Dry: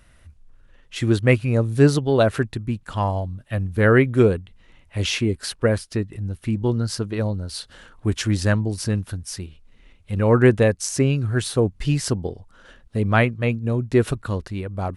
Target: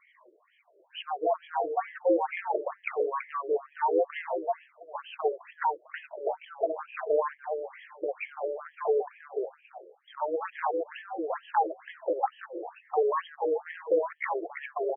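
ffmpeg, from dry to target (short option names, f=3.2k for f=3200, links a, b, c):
-filter_complex "[0:a]afftfilt=real='re*pow(10,20/40*sin(2*PI*(1.1*log(max(b,1)*sr/1024/100)/log(2)-(-1.7)*(pts-256)/sr)))':imag='im*pow(10,20/40*sin(2*PI*(1.1*log(max(b,1)*sr/1024/100)/log(2)-(-1.7)*(pts-256)/sr)))':win_size=1024:overlap=0.75,acompressor=threshold=-21dB:ratio=12,afreqshift=91,equalizer=f=3.7k:w=0.32:g=-10.5,bandreject=f=880:w=17,asetrate=64194,aresample=44100,atempo=0.686977,aeval=exprs='0.178*sin(PI/2*1.41*val(0)/0.178)':c=same,asubboost=boost=4.5:cutoff=63,asplit=2[a][b];[b]adelay=331,lowpass=f=2.7k:p=1,volume=-5dB,asplit=2[c][d];[d]adelay=331,lowpass=f=2.7k:p=1,volume=0.19,asplit=2[e][f];[f]adelay=331,lowpass=f=2.7k:p=1,volume=0.19[g];[a][c][e][g]amix=inputs=4:normalize=0,afftfilt=real='re*between(b*sr/1024,440*pow(2400/440,0.5+0.5*sin(2*PI*2.2*pts/sr))/1.41,440*pow(2400/440,0.5+0.5*sin(2*PI*2.2*pts/sr))*1.41)':imag='im*between(b*sr/1024,440*pow(2400/440,0.5+0.5*sin(2*PI*2.2*pts/sr))/1.41,440*pow(2400/440,0.5+0.5*sin(2*PI*2.2*pts/sr))*1.41)':win_size=1024:overlap=0.75"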